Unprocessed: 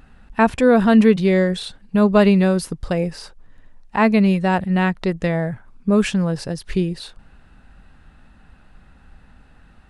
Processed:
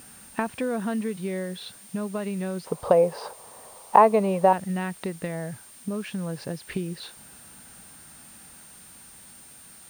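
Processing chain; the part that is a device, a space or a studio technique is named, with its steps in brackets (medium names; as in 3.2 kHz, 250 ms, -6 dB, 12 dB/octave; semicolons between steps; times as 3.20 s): medium wave at night (band-pass 130–3900 Hz; compression 6:1, threshold -25 dBFS, peak gain reduction 15.5 dB; tremolo 0.26 Hz, depth 36%; whistle 9 kHz -48 dBFS; white noise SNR 20 dB); 2.66–4.53 s: high-order bell 690 Hz +15 dB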